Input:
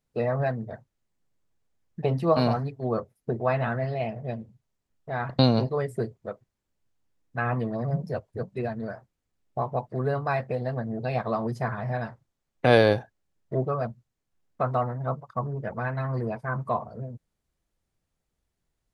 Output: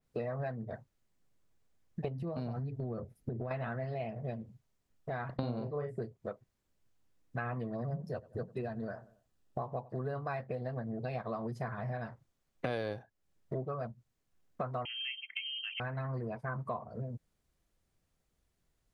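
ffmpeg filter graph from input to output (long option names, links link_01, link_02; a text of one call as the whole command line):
ffmpeg -i in.wav -filter_complex "[0:a]asettb=1/sr,asplit=3[link_01][link_02][link_03];[link_01]atrim=end=2.084[link_04];[link_02]atrim=start=2.08:end=3.51,asetpts=PTS-STARTPTS,afade=type=in:duration=0.004:curve=qsin,afade=type=out:start_time=1.426:duration=0.004:curve=qsin,lowshelf=frequency=380:gain=12,acompressor=threshold=-27dB:ratio=12:attack=3.2:release=140:knee=1:detection=peak,bandreject=frequency=1100:width=14[link_05];[link_03]atrim=start=3.506[link_06];[link_04][link_05]acrossfade=duration=0.004:curve1=hsin:curve2=qsin[link_07];[link_07][link_06]acrossfade=duration=0.004:curve1=qsin:curve2=hsin,asettb=1/sr,asplit=3[link_08][link_09][link_10];[link_08]atrim=end=5.374[link_11];[link_09]atrim=start=5.37:end=6.02,asetpts=PTS-STARTPTS,afade=type=in:duration=0.004:curve=qsin,afade=type=out:start_time=0.646:duration=0.004:curve=qsin,lowpass=frequency=1500:poles=1,asplit=2[link_12][link_13];[link_13]adelay=41,volume=-4dB[link_14];[link_12][link_14]amix=inputs=2:normalize=0,atrim=end_sample=28665[link_15];[link_10]atrim=start=6.016[link_16];[link_11][link_15]acrossfade=duration=0.004:curve1=hsin:curve2=qsin[link_17];[link_17][link_16]acrossfade=duration=0.004:curve1=qsin:curve2=hsin,asettb=1/sr,asplit=3[link_18][link_19][link_20];[link_18]atrim=end=7.804[link_21];[link_19]atrim=start=7.8:end=10.19,asetpts=PTS-STARTPTS,afade=type=in:duration=0.004:curve=qsin,afade=type=out:start_time=2.386:duration=0.004:curve=qsin,bandreject=frequency=2200:width=7.3,asplit=2[link_22][link_23];[link_23]adelay=92,lowpass=frequency=1800:poles=1,volume=-23dB,asplit=2[link_24][link_25];[link_25]adelay=92,lowpass=frequency=1800:poles=1,volume=0.43,asplit=2[link_26][link_27];[link_27]adelay=92,lowpass=frequency=1800:poles=1,volume=0.43[link_28];[link_22][link_24][link_26][link_28]amix=inputs=4:normalize=0,atrim=end_sample=105399[link_29];[link_20]atrim=start=10.186[link_30];[link_21][link_29]acrossfade=duration=0.004:curve1=hsin:curve2=qsin[link_31];[link_31][link_30]acrossfade=duration=0.004:curve1=qsin:curve2=hsin,asettb=1/sr,asplit=3[link_32][link_33][link_34];[link_32]atrim=end=14.854[link_35];[link_33]atrim=start=14.85:end=15.8,asetpts=PTS-STARTPTS,afade=type=in:duration=0.004:curve=qsin,afade=type=out:start_time=0.946:duration=0.004:curve=qsin,equalizer=frequency=450:width_type=o:width=1.6:gain=6,acompressor=threshold=-29dB:ratio=2.5:attack=3.2:release=140:knee=1:detection=peak,lowpass=frequency=2800:width_type=q:width=0.5098,lowpass=frequency=2800:width_type=q:width=0.6013,lowpass=frequency=2800:width_type=q:width=0.9,lowpass=frequency=2800:width_type=q:width=2.563,afreqshift=-3300[link_36];[link_34]atrim=start=15.796[link_37];[link_35][link_36]acrossfade=duration=0.004:curve1=hsin:curve2=qsin[link_38];[link_38][link_37]acrossfade=duration=0.004:curve1=qsin:curve2=hsin,acompressor=threshold=-38dB:ratio=4,bandreject=frequency=870:width=21,adynamicequalizer=threshold=0.00158:dfrequency=2900:dqfactor=0.7:tfrequency=2900:tqfactor=0.7:attack=5:release=100:ratio=0.375:range=2:mode=cutabove:tftype=highshelf,volume=1.5dB" out.wav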